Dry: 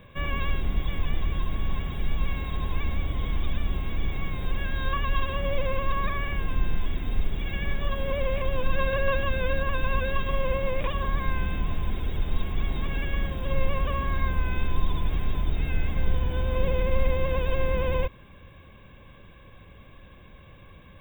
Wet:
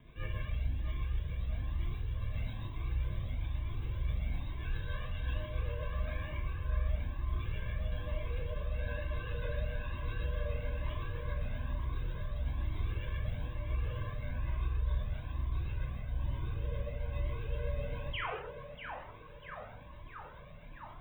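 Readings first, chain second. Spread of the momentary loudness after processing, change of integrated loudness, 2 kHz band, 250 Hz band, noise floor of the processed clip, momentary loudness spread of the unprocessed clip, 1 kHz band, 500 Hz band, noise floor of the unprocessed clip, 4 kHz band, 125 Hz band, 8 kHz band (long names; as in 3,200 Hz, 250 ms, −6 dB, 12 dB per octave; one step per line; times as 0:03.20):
8 LU, −9.0 dB, −12.5 dB, −13.0 dB, −50 dBFS, 5 LU, −14.0 dB, −14.0 dB, −50 dBFS, −12.0 dB, −5.5 dB, can't be measured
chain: parametric band 1,200 Hz −3 dB 0.4 octaves
reversed playback
downward compressor 6 to 1, threshold −30 dBFS, peak gain reduction 14 dB
reversed playback
rotating-speaker cabinet horn 7.5 Hz
ring modulation 54 Hz
sound drawn into the spectrogram fall, 0:18.13–0:18.35, 370–3,500 Hz −36 dBFS
on a send: feedback echo with a band-pass in the loop 643 ms, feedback 82%, band-pass 1,000 Hz, level −4.5 dB
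on the sum: reverb whose tail is shaped and stops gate 280 ms falling, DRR −1.5 dB
flanger whose copies keep moving one way rising 1.1 Hz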